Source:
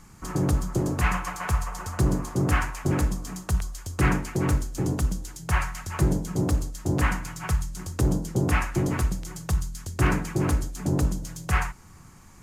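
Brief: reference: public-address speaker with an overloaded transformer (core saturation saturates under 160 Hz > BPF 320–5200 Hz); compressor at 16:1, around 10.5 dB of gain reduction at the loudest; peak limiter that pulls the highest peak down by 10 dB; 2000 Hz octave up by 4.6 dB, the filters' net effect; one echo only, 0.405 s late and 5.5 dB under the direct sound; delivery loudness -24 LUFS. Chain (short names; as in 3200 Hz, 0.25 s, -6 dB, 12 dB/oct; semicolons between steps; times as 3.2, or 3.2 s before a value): bell 2000 Hz +6 dB; compressor 16:1, threshold -27 dBFS; limiter -25 dBFS; echo 0.405 s -5.5 dB; core saturation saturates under 160 Hz; BPF 320–5200 Hz; gain +17 dB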